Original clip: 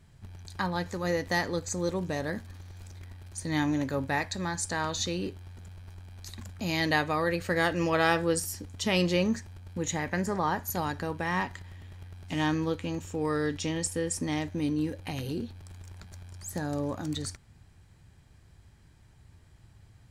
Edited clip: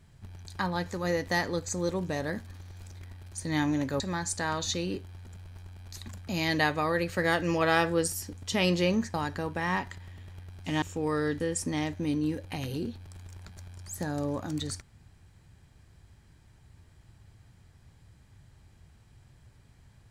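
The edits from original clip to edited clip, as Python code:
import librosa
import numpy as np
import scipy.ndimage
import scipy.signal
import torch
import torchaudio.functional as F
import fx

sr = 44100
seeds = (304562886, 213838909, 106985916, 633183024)

y = fx.edit(x, sr, fx.cut(start_s=4.0, length_s=0.32),
    fx.cut(start_s=9.46, length_s=1.32),
    fx.cut(start_s=12.46, length_s=0.54),
    fx.cut(start_s=13.58, length_s=0.37), tone=tone)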